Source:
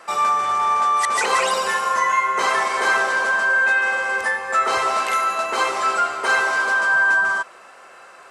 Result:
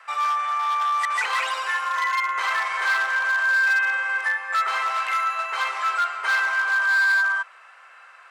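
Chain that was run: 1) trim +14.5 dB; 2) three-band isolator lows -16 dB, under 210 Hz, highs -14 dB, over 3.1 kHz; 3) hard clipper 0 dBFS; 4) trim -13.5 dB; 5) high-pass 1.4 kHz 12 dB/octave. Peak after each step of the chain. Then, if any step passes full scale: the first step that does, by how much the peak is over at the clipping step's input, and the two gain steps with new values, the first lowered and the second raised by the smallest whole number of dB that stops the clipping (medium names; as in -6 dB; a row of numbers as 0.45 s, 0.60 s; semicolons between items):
+7.0 dBFS, +6.5 dBFS, 0.0 dBFS, -13.5 dBFS, -12.5 dBFS; step 1, 6.5 dB; step 1 +7.5 dB, step 4 -6.5 dB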